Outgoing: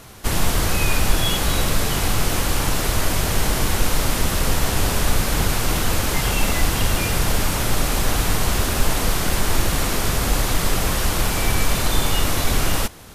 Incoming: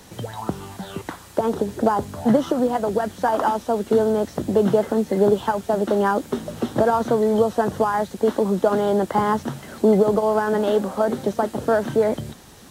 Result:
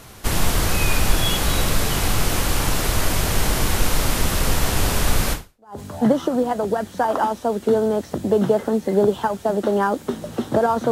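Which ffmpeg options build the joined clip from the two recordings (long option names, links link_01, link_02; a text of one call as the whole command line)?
ffmpeg -i cue0.wav -i cue1.wav -filter_complex "[0:a]apad=whole_dur=10.91,atrim=end=10.91,atrim=end=5.8,asetpts=PTS-STARTPTS[link_01];[1:a]atrim=start=1.56:end=7.15,asetpts=PTS-STARTPTS[link_02];[link_01][link_02]acrossfade=duration=0.48:curve1=exp:curve2=exp" out.wav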